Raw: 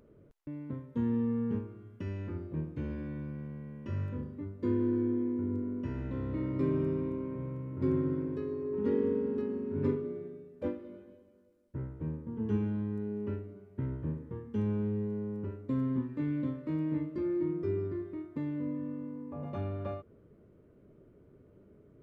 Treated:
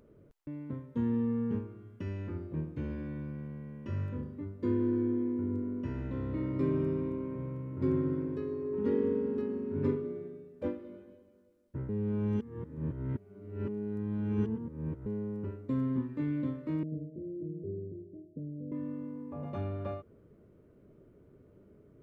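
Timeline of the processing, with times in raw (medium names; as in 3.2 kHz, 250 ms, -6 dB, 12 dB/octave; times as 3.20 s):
11.89–15.06 s: reverse
16.83–18.72 s: rippled Chebyshev low-pass 660 Hz, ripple 9 dB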